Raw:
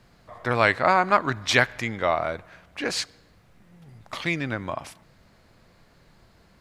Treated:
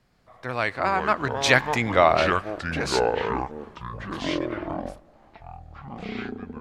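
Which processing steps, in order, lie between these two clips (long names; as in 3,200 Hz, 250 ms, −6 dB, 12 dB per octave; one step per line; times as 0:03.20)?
source passing by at 0:02.08, 12 m/s, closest 4.6 metres
pitch vibrato 14 Hz 20 cents
delay with pitch and tempo change per echo 148 ms, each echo −6 semitones, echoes 3, each echo −6 dB
level +6 dB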